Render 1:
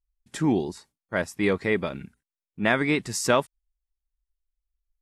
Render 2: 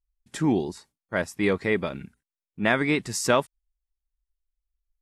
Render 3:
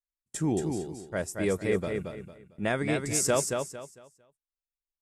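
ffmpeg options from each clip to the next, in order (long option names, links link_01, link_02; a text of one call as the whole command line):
ffmpeg -i in.wav -af anull out.wav
ffmpeg -i in.wav -filter_complex "[0:a]agate=range=-24dB:threshold=-47dB:ratio=16:detection=peak,equalizer=frequency=250:width_type=o:width=1:gain=-7,equalizer=frequency=1000:width_type=o:width=1:gain=-8,equalizer=frequency=2000:width_type=o:width=1:gain=-7,equalizer=frequency=4000:width_type=o:width=1:gain=-8,equalizer=frequency=8000:width_type=o:width=1:gain=6,asplit=2[link_01][link_02];[link_02]aecho=0:1:226|452|678|904:0.562|0.157|0.0441|0.0123[link_03];[link_01][link_03]amix=inputs=2:normalize=0" out.wav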